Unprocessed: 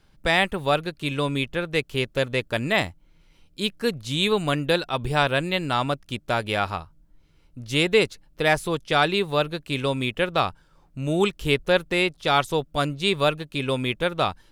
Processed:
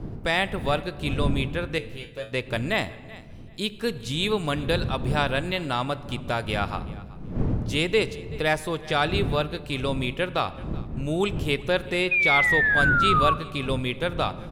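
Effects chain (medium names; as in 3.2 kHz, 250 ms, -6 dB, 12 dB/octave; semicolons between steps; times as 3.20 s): wind noise 170 Hz -30 dBFS; feedback delay 381 ms, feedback 18%, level -23.5 dB; in parallel at -0.5 dB: compression, threshold -31 dBFS, peak gain reduction 16.5 dB; 1.78–2.32 s: on the sum: feedback comb 110 Hz, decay 0.29 s, harmonics all, mix 90%; 12.11–13.34 s: painted sound fall 1.1–2.5 kHz -16 dBFS; on a send at -15 dB: reverberation RT60 1.5 s, pre-delay 8 ms; on the sum: trim -5 dB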